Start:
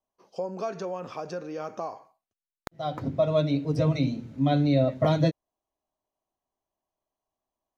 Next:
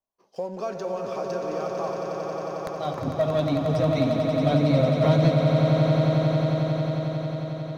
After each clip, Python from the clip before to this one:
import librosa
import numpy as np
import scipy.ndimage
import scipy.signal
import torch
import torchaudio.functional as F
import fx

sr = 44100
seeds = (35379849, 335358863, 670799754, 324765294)

y = fx.leveller(x, sr, passes=1)
y = fx.echo_swell(y, sr, ms=90, loudest=8, wet_db=-8.0)
y = y * librosa.db_to_amplitude(-3.0)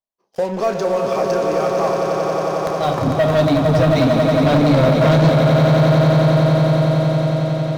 y = fx.leveller(x, sr, passes=3)
y = fx.doubler(y, sr, ms=31.0, db=-10.5)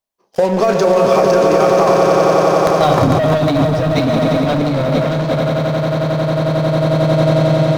y = fx.over_compress(x, sr, threshold_db=-18.0, ratio=-1.0)
y = y + 10.0 ** (-13.5 / 20.0) * np.pad(y, (int(138 * sr / 1000.0), 0))[:len(y)]
y = y * librosa.db_to_amplitude(5.0)